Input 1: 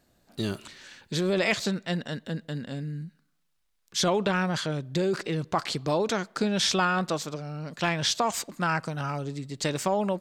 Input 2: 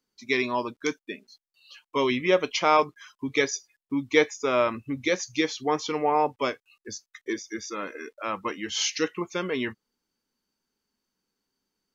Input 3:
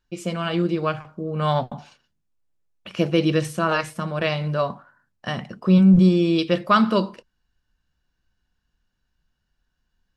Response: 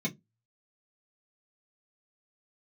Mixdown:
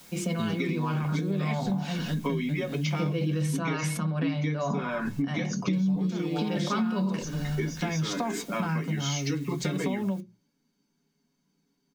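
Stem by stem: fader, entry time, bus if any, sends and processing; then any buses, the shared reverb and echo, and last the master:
−2.0 dB, 0.00 s, muted 0:03.59–0:05.73, send −6 dB, bit-depth reduction 8 bits, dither triangular
+2.5 dB, 0.30 s, send −5 dB, comb filter 7.1 ms, depth 43%; downward compressor 4 to 1, threshold −28 dBFS, peak gain reduction 12.5 dB
−1.5 dB, 0.00 s, send −8 dB, low-shelf EQ 190 Hz −6.5 dB; level that may fall only so fast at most 33 dB per second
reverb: on, RT60 0.15 s, pre-delay 3 ms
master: downward compressor 6 to 1, threshold −26 dBFS, peak gain reduction 21.5 dB

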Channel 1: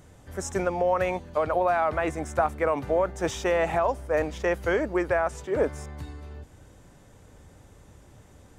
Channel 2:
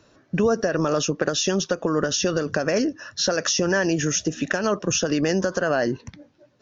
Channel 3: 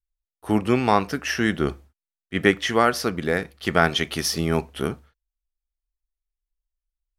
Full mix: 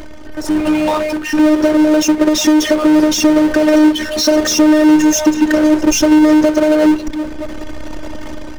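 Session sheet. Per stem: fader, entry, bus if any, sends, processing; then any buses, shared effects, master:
+1.5 dB, 0.00 s, no send, high shelf with overshoot 6,100 Hz −11 dB, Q 1.5; notch filter 3,700 Hz; hard clipping −22.5 dBFS, distortion −10 dB; automatic ducking −13 dB, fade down 0.50 s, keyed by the third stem
−3.0 dB, 1.00 s, no send, low shelf with overshoot 600 Hz +8.5 dB, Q 3
−3.5 dB, 0.00 s, no send, downward compressor, threshold −24 dBFS, peak gain reduction 12.5 dB; rotating-speaker cabinet horn 1 Hz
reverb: not used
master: automatic gain control gain up to 12 dB; phases set to zero 307 Hz; power curve on the samples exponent 0.5

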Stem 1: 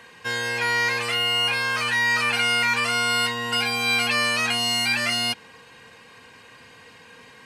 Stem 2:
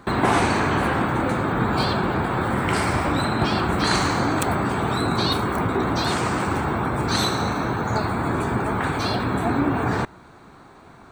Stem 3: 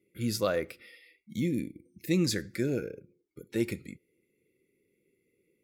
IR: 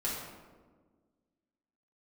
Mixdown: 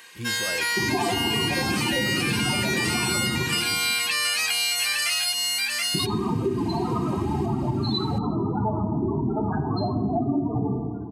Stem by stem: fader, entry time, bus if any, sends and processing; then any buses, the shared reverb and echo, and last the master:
−4.5 dB, 0.00 s, no send, echo send −3.5 dB, spectral tilt +4.5 dB per octave
+1.5 dB, 0.70 s, muted 0:03.43–0:05.94, send −6.5 dB, no echo send, mains-hum notches 60/120/180 Hz; spectral peaks only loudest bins 8; parametric band 620 Hz +5 dB 0.42 octaves
+1.5 dB, 0.00 s, no send, no echo send, brickwall limiter −26.5 dBFS, peak gain reduction 11.5 dB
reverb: on, RT60 1.5 s, pre-delay 5 ms
echo: single-tap delay 727 ms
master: downward compressor, threshold −21 dBFS, peak gain reduction 9.5 dB

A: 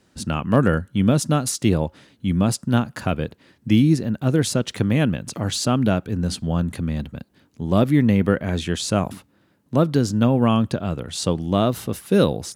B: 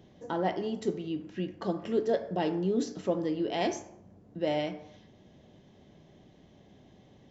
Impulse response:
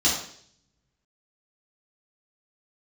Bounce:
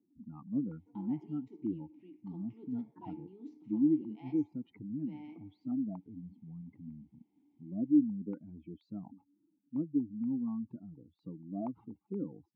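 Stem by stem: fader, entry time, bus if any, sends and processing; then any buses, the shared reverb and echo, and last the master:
−6.0 dB, 0.00 s, no send, expanding power law on the bin magnitudes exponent 2.8; low-pass on a step sequencer 4.2 Hz 650–1,600 Hz
+0.5 dB, 0.65 s, no send, automatic ducking −11 dB, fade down 1.10 s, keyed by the first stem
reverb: not used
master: formant filter u

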